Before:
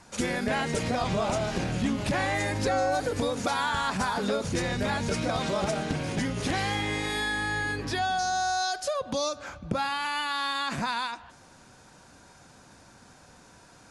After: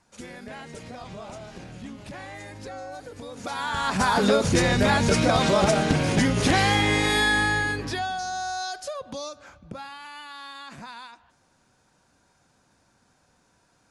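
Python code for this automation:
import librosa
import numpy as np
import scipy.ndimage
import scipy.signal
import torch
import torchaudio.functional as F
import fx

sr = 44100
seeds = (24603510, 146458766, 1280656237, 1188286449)

y = fx.gain(x, sr, db=fx.line((3.24, -12.0), (3.52, -4.0), (4.15, 8.0), (7.38, 8.0), (8.18, -3.0), (8.75, -3.0), (9.99, -11.0)))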